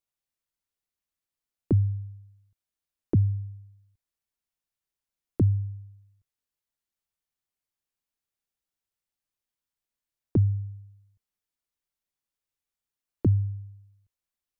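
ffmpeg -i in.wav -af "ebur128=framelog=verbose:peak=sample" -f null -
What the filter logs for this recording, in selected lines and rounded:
Integrated loudness:
  I:         -27.2 LUFS
  Threshold: -39.7 LUFS
Loudness range:
  LRA:         3.0 LU
  Threshold: -53.4 LUFS
  LRA low:   -34.2 LUFS
  LRA high:  -31.2 LUFS
Sample peak:
  Peak:      -14.0 dBFS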